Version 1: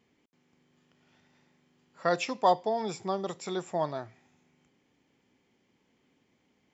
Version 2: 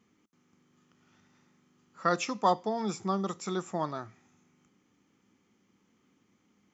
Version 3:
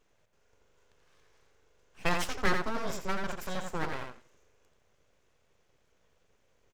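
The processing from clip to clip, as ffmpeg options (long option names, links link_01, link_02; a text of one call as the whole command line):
ffmpeg -i in.wav -af "equalizer=frequency=100:width_type=o:width=0.33:gain=6,equalizer=frequency=200:width_type=o:width=0.33:gain=10,equalizer=frequency=315:width_type=o:width=0.33:gain=5,equalizer=frequency=630:width_type=o:width=0.33:gain=-4,equalizer=frequency=1250:width_type=o:width=0.33:gain=11,equalizer=frequency=6300:width_type=o:width=0.33:gain=9,volume=-2.5dB" out.wav
ffmpeg -i in.wav -filter_complex "[0:a]asplit=2[link_01][link_02];[link_02]adelay=85,lowpass=frequency=4600:poles=1,volume=-5dB,asplit=2[link_03][link_04];[link_04]adelay=85,lowpass=frequency=4600:poles=1,volume=0.18,asplit=2[link_05][link_06];[link_06]adelay=85,lowpass=frequency=4600:poles=1,volume=0.18[link_07];[link_01][link_03][link_05][link_07]amix=inputs=4:normalize=0,aeval=exprs='abs(val(0))':channel_layout=same" out.wav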